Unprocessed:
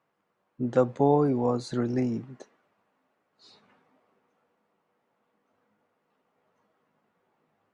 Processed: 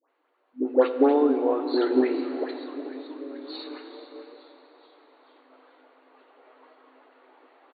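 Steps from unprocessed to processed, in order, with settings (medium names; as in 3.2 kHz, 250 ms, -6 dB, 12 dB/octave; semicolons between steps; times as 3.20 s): frequency-shifting echo 435 ms, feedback 58%, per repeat -140 Hz, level -16.5 dB; dynamic bell 930 Hz, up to -5 dB, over -36 dBFS, Q 0.86; in parallel at -2.5 dB: compression, threshold -32 dBFS, peak gain reduction 13.5 dB; on the sum: transient shaper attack +8 dB, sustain -1 dB; gain riding 2 s; hard clipper -10.5 dBFS, distortion -18 dB; phase dispersion highs, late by 97 ms, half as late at 1.3 kHz; reverberation RT60 3.6 s, pre-delay 34 ms, DRR 8 dB; FFT band-pass 250–4600 Hz; trim +2 dB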